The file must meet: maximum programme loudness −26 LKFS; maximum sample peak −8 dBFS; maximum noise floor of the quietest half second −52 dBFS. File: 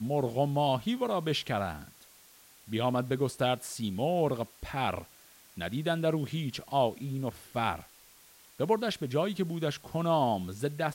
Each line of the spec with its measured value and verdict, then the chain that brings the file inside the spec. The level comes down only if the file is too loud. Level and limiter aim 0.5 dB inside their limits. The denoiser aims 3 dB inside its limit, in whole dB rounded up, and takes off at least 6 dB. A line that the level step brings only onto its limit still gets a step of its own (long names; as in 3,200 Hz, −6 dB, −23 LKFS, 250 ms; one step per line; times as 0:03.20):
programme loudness −31.5 LKFS: in spec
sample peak −14.0 dBFS: in spec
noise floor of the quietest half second −58 dBFS: in spec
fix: no processing needed